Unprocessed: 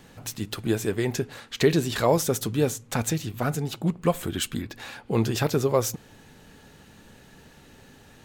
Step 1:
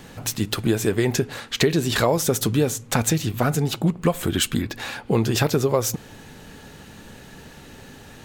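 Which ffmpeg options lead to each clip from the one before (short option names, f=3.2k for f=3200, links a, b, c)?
-af "acompressor=threshold=-24dB:ratio=5,volume=8dB"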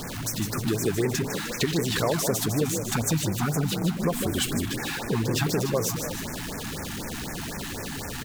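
-filter_complex "[0:a]aeval=exprs='val(0)+0.5*0.0794*sgn(val(0))':c=same,asplit=8[a][b][c][d][e][f][g][h];[b]adelay=153,afreqshift=37,volume=-7dB[i];[c]adelay=306,afreqshift=74,volume=-12.4dB[j];[d]adelay=459,afreqshift=111,volume=-17.7dB[k];[e]adelay=612,afreqshift=148,volume=-23.1dB[l];[f]adelay=765,afreqshift=185,volume=-28.4dB[m];[g]adelay=918,afreqshift=222,volume=-33.8dB[n];[h]adelay=1071,afreqshift=259,volume=-39.1dB[o];[a][i][j][k][l][m][n][o]amix=inputs=8:normalize=0,afftfilt=real='re*(1-between(b*sr/1024,440*pow(3800/440,0.5+0.5*sin(2*PI*4*pts/sr))/1.41,440*pow(3800/440,0.5+0.5*sin(2*PI*4*pts/sr))*1.41))':imag='im*(1-between(b*sr/1024,440*pow(3800/440,0.5+0.5*sin(2*PI*4*pts/sr))/1.41,440*pow(3800/440,0.5+0.5*sin(2*PI*4*pts/sr))*1.41))':win_size=1024:overlap=0.75,volume=-7.5dB"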